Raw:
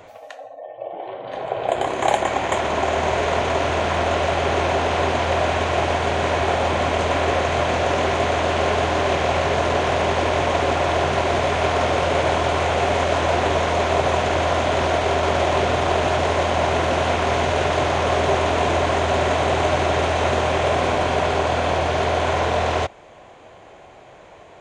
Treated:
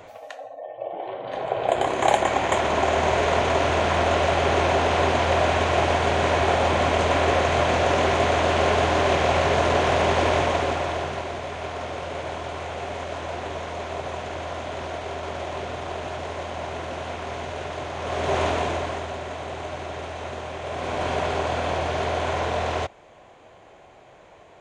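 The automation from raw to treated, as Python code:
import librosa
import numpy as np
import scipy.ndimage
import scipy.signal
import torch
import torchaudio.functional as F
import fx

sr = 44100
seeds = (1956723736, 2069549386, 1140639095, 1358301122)

y = fx.gain(x, sr, db=fx.line((10.33, -0.5), (11.38, -12.0), (17.94, -12.0), (18.42, -2.5), (19.2, -13.5), (20.61, -13.5), (21.07, -5.0)))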